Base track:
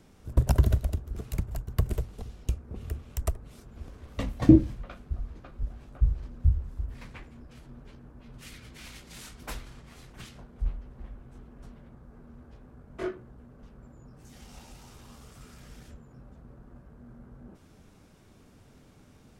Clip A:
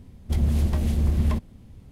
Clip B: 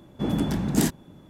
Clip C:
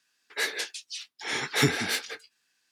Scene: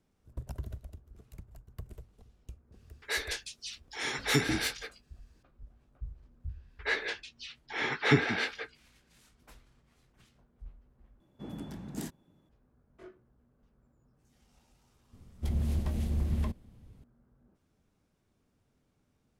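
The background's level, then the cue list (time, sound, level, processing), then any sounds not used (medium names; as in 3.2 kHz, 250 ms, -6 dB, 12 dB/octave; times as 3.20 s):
base track -18 dB
2.72 s: add C -4 dB
6.49 s: add C + low-pass 2.8 kHz
11.20 s: replace with B -17 dB
15.13 s: add A -8.5 dB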